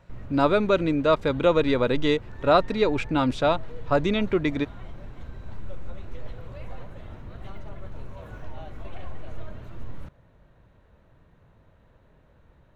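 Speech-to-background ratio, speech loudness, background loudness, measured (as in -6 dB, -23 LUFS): 19.5 dB, -23.5 LUFS, -43.0 LUFS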